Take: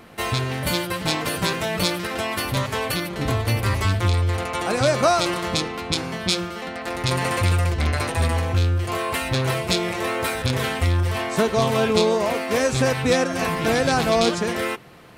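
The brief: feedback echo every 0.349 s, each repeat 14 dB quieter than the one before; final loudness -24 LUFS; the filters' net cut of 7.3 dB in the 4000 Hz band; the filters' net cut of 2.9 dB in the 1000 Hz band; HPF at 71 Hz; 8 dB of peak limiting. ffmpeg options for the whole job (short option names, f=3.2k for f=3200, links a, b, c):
-af "highpass=71,equalizer=f=1k:t=o:g=-3.5,equalizer=f=4k:t=o:g=-9,alimiter=limit=-15.5dB:level=0:latency=1,aecho=1:1:349|698:0.2|0.0399,volume=2dB"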